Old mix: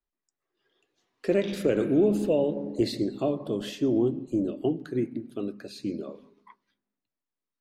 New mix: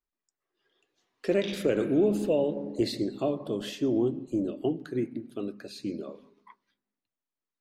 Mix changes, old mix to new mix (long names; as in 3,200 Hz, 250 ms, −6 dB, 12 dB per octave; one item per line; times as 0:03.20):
background +4.5 dB
master: add low-shelf EQ 440 Hz −3 dB